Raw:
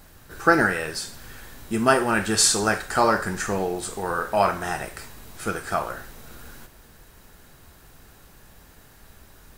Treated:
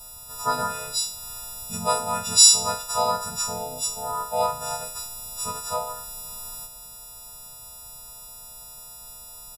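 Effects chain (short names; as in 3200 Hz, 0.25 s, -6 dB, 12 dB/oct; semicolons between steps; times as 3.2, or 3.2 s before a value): frequency quantiser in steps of 6 st; in parallel at +0.5 dB: compressor 4:1, threshold -33 dBFS, peak gain reduction 25.5 dB; on the sum: harmoniser -4 st -1 dB, -3 st -18 dB; fixed phaser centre 790 Hz, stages 4; gain -10 dB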